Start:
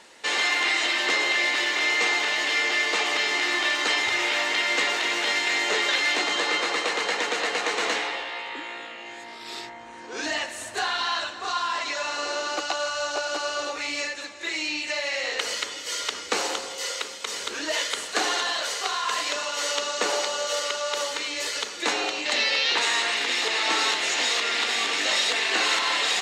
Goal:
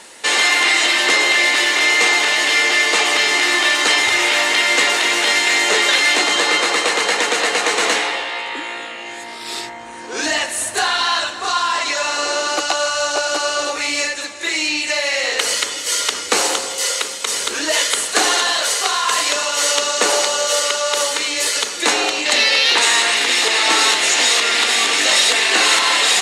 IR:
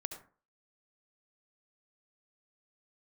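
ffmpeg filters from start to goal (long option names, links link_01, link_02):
-af "acontrast=64,equalizer=frequency=10000:width=1.4:gain=12.5,volume=2dB"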